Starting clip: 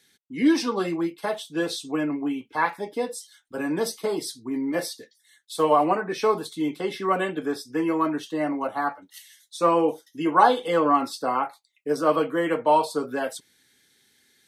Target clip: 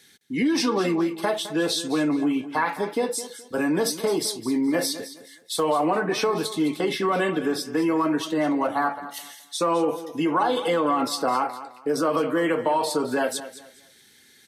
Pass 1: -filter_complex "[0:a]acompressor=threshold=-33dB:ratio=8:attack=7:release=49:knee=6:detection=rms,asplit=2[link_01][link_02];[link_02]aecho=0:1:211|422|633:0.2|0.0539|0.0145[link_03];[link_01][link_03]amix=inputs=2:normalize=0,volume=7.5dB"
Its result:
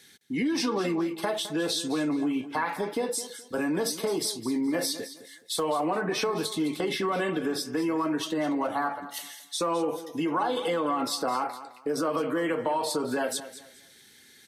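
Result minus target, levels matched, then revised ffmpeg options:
downward compressor: peak gain reduction +5 dB
-filter_complex "[0:a]acompressor=threshold=-27dB:ratio=8:attack=7:release=49:knee=6:detection=rms,asplit=2[link_01][link_02];[link_02]aecho=0:1:211|422|633:0.2|0.0539|0.0145[link_03];[link_01][link_03]amix=inputs=2:normalize=0,volume=7.5dB"

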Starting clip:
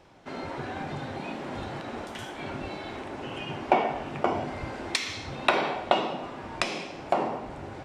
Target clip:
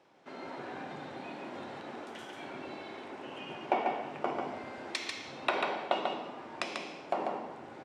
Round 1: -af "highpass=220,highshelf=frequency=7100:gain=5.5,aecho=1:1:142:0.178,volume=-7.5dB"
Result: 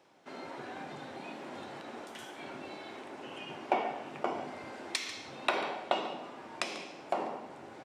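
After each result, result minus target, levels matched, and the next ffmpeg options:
echo-to-direct −11 dB; 8,000 Hz band +5.0 dB
-af "highpass=220,highshelf=frequency=7100:gain=5.5,aecho=1:1:142:0.631,volume=-7.5dB"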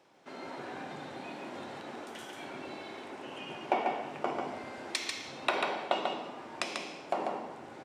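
8,000 Hz band +5.0 dB
-af "highpass=220,highshelf=frequency=7100:gain=-6,aecho=1:1:142:0.631,volume=-7.5dB"

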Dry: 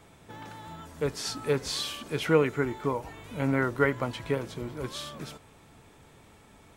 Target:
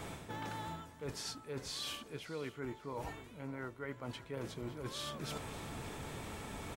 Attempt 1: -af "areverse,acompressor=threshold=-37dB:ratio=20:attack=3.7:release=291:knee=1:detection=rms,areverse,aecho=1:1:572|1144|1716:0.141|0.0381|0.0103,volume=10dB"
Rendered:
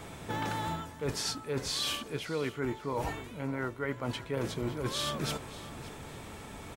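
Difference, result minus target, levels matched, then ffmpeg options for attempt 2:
downward compressor: peak gain reduction −9 dB
-af "areverse,acompressor=threshold=-46.5dB:ratio=20:attack=3.7:release=291:knee=1:detection=rms,areverse,aecho=1:1:572|1144|1716:0.141|0.0381|0.0103,volume=10dB"

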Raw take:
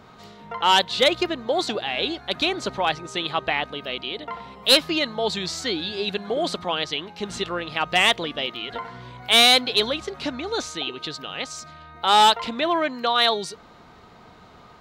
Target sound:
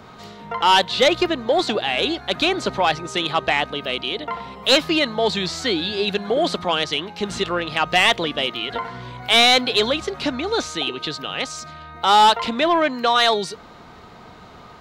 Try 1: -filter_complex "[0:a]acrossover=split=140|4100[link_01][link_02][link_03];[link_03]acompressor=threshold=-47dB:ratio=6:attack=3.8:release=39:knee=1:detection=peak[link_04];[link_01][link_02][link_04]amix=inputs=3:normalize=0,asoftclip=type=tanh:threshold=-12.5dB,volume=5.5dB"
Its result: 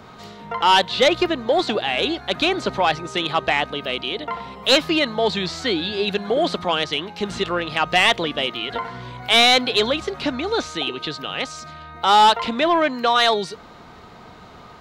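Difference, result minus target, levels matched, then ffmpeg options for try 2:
downward compressor: peak gain reduction +6 dB
-filter_complex "[0:a]acrossover=split=140|4100[link_01][link_02][link_03];[link_03]acompressor=threshold=-39.5dB:ratio=6:attack=3.8:release=39:knee=1:detection=peak[link_04];[link_01][link_02][link_04]amix=inputs=3:normalize=0,asoftclip=type=tanh:threshold=-12.5dB,volume=5.5dB"

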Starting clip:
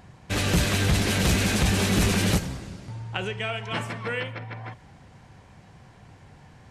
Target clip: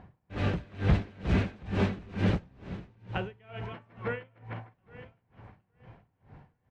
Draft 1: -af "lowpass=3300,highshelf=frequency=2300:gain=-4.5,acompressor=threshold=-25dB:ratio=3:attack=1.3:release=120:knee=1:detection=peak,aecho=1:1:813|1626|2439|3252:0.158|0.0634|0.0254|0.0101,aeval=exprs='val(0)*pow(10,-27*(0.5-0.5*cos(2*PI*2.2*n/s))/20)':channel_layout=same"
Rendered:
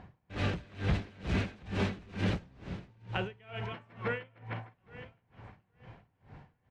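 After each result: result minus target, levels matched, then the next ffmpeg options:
downward compressor: peak gain reduction +7 dB; 4,000 Hz band +5.0 dB
-af "lowpass=3300,highshelf=frequency=2300:gain=-4.5,aecho=1:1:813|1626|2439|3252:0.158|0.0634|0.0254|0.0101,aeval=exprs='val(0)*pow(10,-27*(0.5-0.5*cos(2*PI*2.2*n/s))/20)':channel_layout=same"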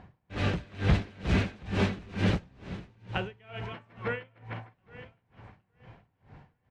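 4,000 Hz band +4.5 dB
-af "lowpass=3300,highshelf=frequency=2300:gain=-12,aecho=1:1:813|1626|2439|3252:0.158|0.0634|0.0254|0.0101,aeval=exprs='val(0)*pow(10,-27*(0.5-0.5*cos(2*PI*2.2*n/s))/20)':channel_layout=same"

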